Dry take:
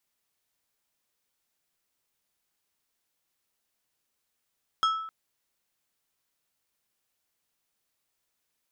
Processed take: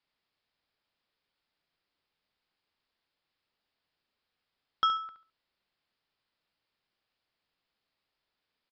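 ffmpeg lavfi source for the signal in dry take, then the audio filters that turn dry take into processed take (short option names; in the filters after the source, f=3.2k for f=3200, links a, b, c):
-f lavfi -i "aevalsrc='0.106*pow(10,-3*t/0.79)*sin(2*PI*1310*t)+0.0447*pow(10,-3*t/0.416)*sin(2*PI*3275*t)+0.0188*pow(10,-3*t/0.299)*sin(2*PI*5240*t)+0.00794*pow(10,-3*t/0.256)*sin(2*PI*6550*t)+0.00335*pow(10,-3*t/0.213)*sin(2*PI*8515*t)':d=0.26:s=44100"
-filter_complex "[0:a]asplit=2[a][b];[b]aecho=0:1:70|140|210:0.299|0.0716|0.0172[c];[a][c]amix=inputs=2:normalize=0,aresample=11025,aresample=44100"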